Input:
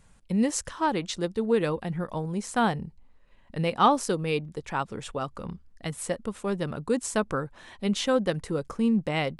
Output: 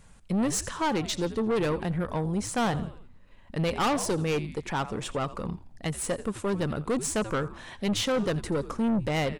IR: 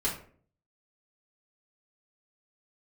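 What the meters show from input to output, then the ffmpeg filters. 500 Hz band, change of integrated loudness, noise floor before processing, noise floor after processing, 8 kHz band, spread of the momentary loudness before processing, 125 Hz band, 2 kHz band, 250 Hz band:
-1.0 dB, -1.0 dB, -58 dBFS, -52 dBFS, +2.5 dB, 10 LU, +1.5 dB, -0.5 dB, -1.0 dB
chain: -filter_complex "[0:a]asplit=5[a][b][c][d][e];[b]adelay=85,afreqshift=-98,volume=-18dB[f];[c]adelay=170,afreqshift=-196,volume=-24.2dB[g];[d]adelay=255,afreqshift=-294,volume=-30.4dB[h];[e]adelay=340,afreqshift=-392,volume=-36.6dB[i];[a][f][g][h][i]amix=inputs=5:normalize=0,aeval=exprs='(tanh(22.4*val(0)+0.25)-tanh(0.25))/22.4':c=same,volume=4.5dB"

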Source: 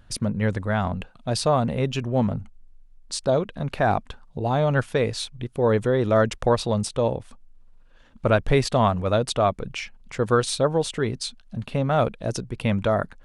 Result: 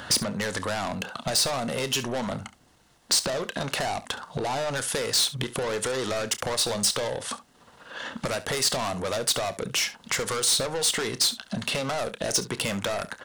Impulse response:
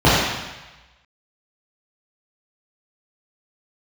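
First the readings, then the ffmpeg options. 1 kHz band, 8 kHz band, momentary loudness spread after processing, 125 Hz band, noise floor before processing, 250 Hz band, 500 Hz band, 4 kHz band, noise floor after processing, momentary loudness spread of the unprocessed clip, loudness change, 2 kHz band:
-6.0 dB, +10.0 dB, 9 LU, -11.5 dB, -52 dBFS, -8.0 dB, -7.0 dB, +7.5 dB, -59 dBFS, 11 LU, -2.5 dB, 0.0 dB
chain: -filter_complex "[0:a]highpass=80,bandreject=f=2.4k:w=7.4,acrossover=split=740|7500[a][b][c];[a]acompressor=threshold=-32dB:ratio=4[d];[b]acompressor=threshold=-37dB:ratio=4[e];[c]acompressor=threshold=-44dB:ratio=4[f];[d][e][f]amix=inputs=3:normalize=0,asplit=2[g][h];[h]highpass=f=720:p=1,volume=30dB,asoftclip=type=tanh:threshold=-11dB[i];[g][i]amix=inputs=2:normalize=0,lowpass=f=7.4k:p=1,volume=-6dB,acrossover=split=4600[j][k];[j]acompressor=threshold=-30dB:ratio=6[l];[l][k]amix=inputs=2:normalize=0,aecho=1:1:30|69:0.188|0.15,volume=1.5dB"

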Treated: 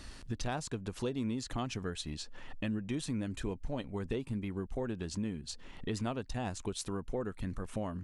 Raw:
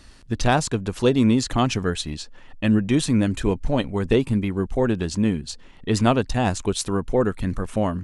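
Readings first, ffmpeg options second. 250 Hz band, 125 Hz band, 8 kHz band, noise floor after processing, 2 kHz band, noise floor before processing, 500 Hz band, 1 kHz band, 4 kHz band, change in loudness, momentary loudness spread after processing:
-16.0 dB, -15.0 dB, -13.0 dB, -51 dBFS, -15.5 dB, -46 dBFS, -16.0 dB, -17.0 dB, -14.0 dB, -16.0 dB, 5 LU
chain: -af "acompressor=threshold=-39dB:ratio=3"

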